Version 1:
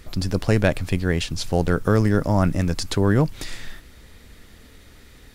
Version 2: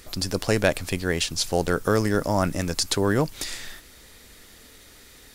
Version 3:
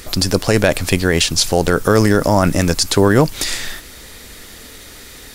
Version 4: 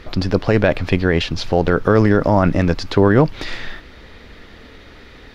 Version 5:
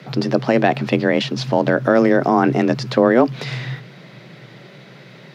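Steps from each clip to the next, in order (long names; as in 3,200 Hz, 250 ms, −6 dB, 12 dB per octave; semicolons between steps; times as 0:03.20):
bass and treble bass −8 dB, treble +7 dB
boost into a limiter +13 dB; level −1 dB
high-frequency loss of the air 300 metres
frequency shifter +120 Hz; level −1 dB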